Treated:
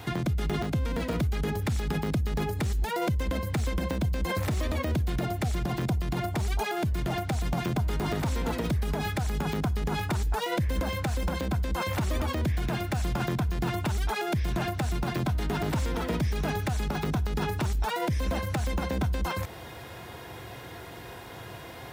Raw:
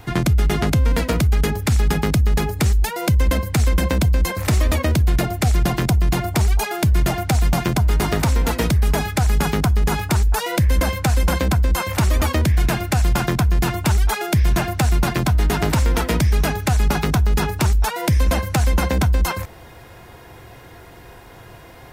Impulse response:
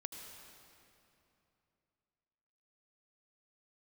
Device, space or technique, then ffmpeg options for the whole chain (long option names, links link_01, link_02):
broadcast voice chain: -af "highpass=78,deesser=0.65,acompressor=threshold=-20dB:ratio=6,equalizer=frequency=3500:width_type=o:width=0.54:gain=4,alimiter=limit=-19.5dB:level=0:latency=1:release=228"